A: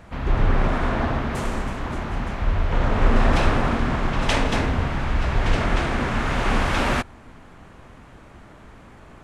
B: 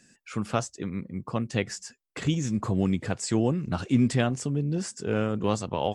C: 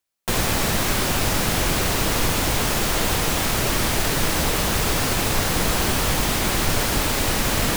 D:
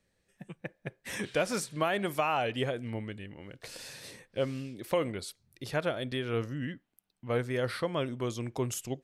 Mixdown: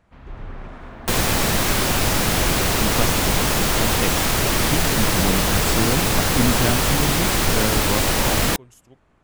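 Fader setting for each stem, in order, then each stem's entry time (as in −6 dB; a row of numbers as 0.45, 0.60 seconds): −15.5, +1.0, +2.0, −15.5 decibels; 0.00, 2.45, 0.80, 0.00 seconds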